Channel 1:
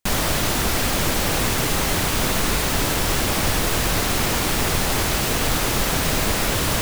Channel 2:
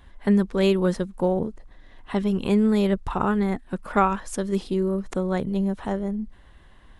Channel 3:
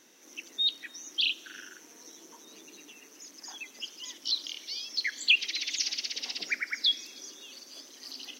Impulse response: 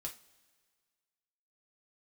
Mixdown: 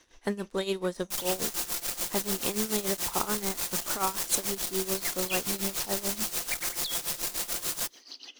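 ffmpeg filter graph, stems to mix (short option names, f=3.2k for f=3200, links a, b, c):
-filter_complex "[0:a]aecho=1:1:5.7:0.7,asoftclip=type=tanh:threshold=-23dB,adelay=1050,volume=-10dB,asplit=2[a][b];[b]volume=-12dB[c];[1:a]acompressor=threshold=-24dB:ratio=2,aeval=exprs='sgn(val(0))*max(abs(val(0))-0.00355,0)':c=same,volume=-1.5dB,asplit=3[d][e][f];[e]volume=-9dB[g];[2:a]lowpass=3.3k,volume=-1dB,asplit=2[h][i];[i]volume=-9.5dB[j];[f]apad=whole_len=370229[k];[h][k]sidechaincompress=threshold=-37dB:ratio=8:attack=16:release=1160[l];[3:a]atrim=start_sample=2205[m];[c][g][j]amix=inputs=3:normalize=0[n];[n][m]afir=irnorm=-1:irlink=0[o];[a][d][l][o]amix=inputs=4:normalize=0,tremolo=f=6.9:d=0.83,bass=f=250:g=-9,treble=f=4k:g=11"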